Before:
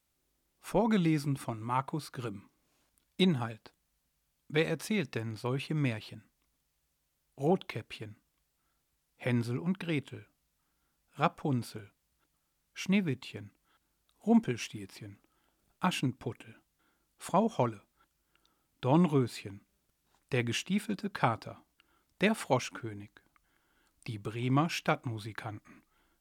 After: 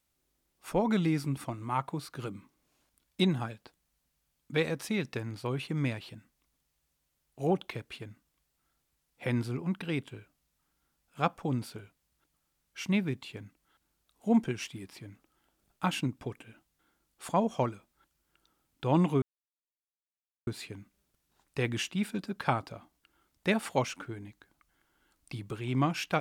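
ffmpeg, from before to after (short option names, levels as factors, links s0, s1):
-filter_complex "[0:a]asplit=2[s0][s1];[s0]atrim=end=19.22,asetpts=PTS-STARTPTS,afade=t=out:st=19.216:d=0.004:c=hsin,apad=pad_dur=1.25[s2];[s1]atrim=start=19.22,asetpts=PTS-STARTPTS,afade=t=in:d=0.004:c=hsin[s3];[s2][s3]concat=n=2:v=0:a=1"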